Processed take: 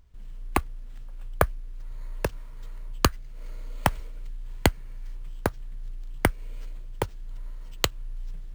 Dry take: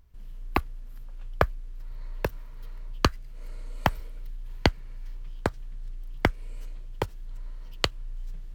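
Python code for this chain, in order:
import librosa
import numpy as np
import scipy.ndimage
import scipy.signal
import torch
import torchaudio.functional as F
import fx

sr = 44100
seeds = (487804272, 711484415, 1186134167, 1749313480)

y = np.repeat(x[::4], 4)[:len(x)]
y = F.gain(torch.from_numpy(y), 1.0).numpy()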